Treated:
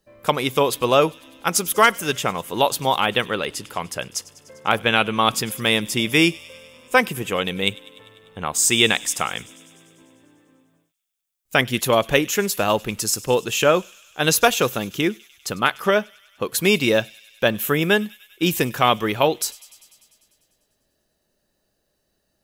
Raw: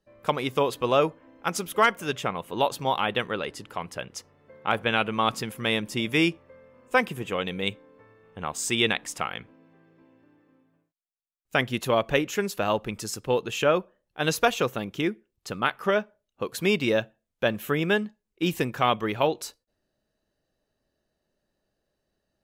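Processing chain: high shelf 5500 Hz +11.5 dB; thin delay 99 ms, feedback 74%, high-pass 3000 Hz, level -19 dB; gain +5 dB

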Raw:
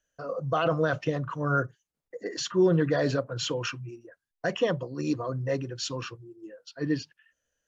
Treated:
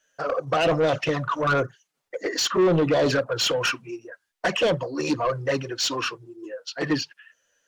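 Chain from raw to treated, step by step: envelope flanger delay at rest 11.2 ms, full sweep at -21 dBFS; overdrive pedal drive 21 dB, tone 6400 Hz, clips at -14 dBFS; gain +1.5 dB

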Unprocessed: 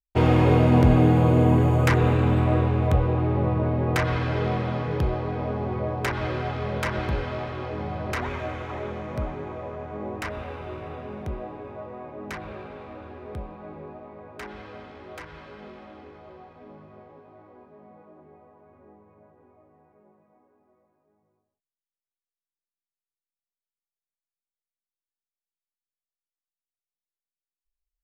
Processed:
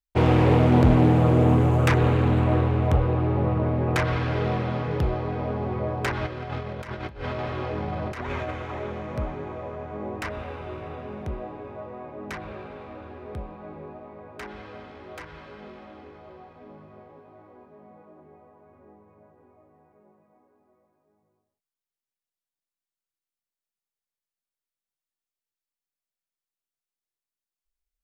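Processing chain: 6.26–8.51 negative-ratio compressor -31 dBFS, ratio -0.5; Doppler distortion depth 0.42 ms

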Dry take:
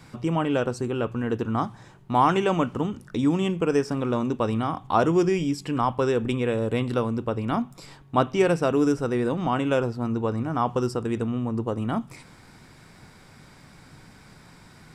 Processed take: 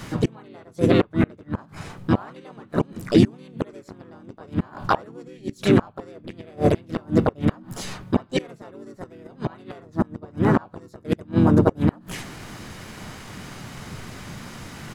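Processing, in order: flipped gate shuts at -16 dBFS, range -32 dB; harmoniser -4 st -1 dB, +5 st 0 dB; gain +7.5 dB

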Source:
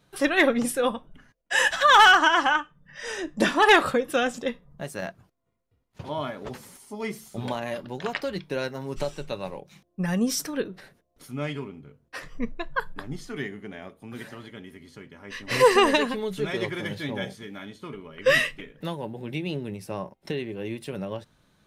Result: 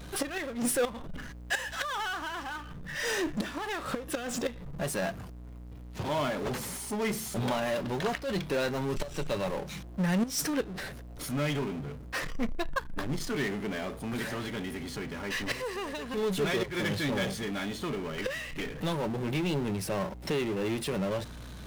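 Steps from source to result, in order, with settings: flipped gate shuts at -15 dBFS, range -25 dB; hum 60 Hz, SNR 27 dB; power-law curve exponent 0.5; gain -6.5 dB

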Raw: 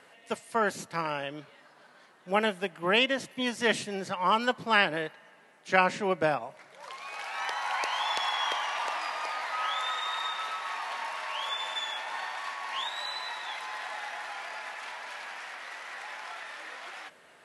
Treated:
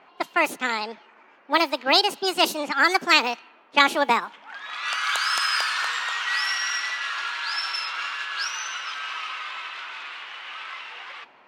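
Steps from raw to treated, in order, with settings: low-pass opened by the level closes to 1000 Hz, open at -24.5 dBFS; wide varispeed 1.52×; gain +6.5 dB

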